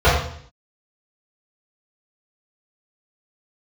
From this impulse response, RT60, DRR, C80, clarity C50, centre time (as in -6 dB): 0.60 s, -13.0 dB, 5.5 dB, 2.0 dB, 50 ms